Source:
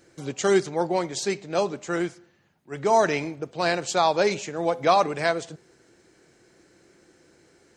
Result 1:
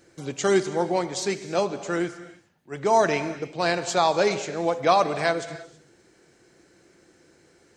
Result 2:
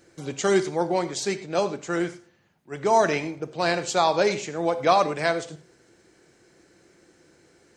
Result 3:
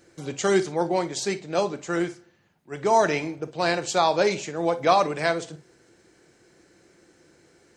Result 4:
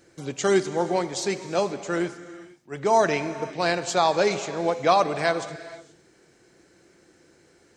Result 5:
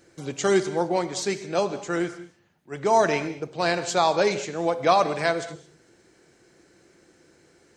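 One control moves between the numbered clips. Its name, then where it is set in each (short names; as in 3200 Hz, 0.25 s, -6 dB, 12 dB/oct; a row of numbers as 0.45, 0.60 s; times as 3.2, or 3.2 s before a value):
non-linear reverb, gate: 350, 130, 80, 510, 240 ms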